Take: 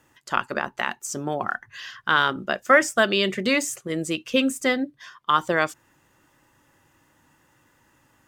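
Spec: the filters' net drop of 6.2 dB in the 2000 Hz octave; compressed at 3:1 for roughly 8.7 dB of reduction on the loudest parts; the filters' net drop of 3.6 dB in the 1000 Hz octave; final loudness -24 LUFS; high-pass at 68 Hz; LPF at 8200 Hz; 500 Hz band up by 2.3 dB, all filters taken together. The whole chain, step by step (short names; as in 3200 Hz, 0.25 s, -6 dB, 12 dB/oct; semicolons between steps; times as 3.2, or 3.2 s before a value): HPF 68 Hz; LPF 8200 Hz; bell 500 Hz +4 dB; bell 1000 Hz -3 dB; bell 2000 Hz -7.5 dB; compressor 3:1, threshold -24 dBFS; gain +6 dB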